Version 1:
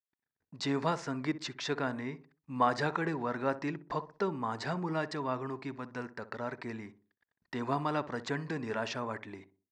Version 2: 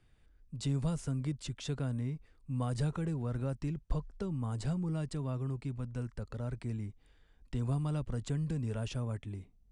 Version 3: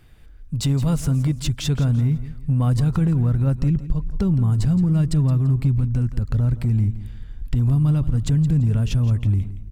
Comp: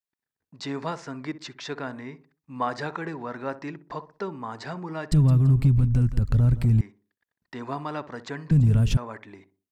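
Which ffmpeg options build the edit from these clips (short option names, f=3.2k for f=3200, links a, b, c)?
-filter_complex "[2:a]asplit=2[a][b];[0:a]asplit=3[c][d][e];[c]atrim=end=5.122[f];[a]atrim=start=5.118:end=6.812[g];[d]atrim=start=6.808:end=8.512[h];[b]atrim=start=8.508:end=8.972[i];[e]atrim=start=8.968[j];[f][g]acrossfade=d=0.004:c1=hsin:c2=hsin[k];[k][h]acrossfade=d=0.004:c1=hsin:c2=hsin[l];[l][i]acrossfade=d=0.004:c1=hsin:c2=hsin[m];[m][j]acrossfade=d=0.004:c1=hsin:c2=hsin"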